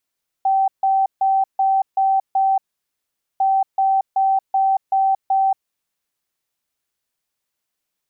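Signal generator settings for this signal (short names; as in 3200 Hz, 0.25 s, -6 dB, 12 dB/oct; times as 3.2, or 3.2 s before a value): beep pattern sine 774 Hz, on 0.23 s, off 0.15 s, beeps 6, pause 0.82 s, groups 2, -13.5 dBFS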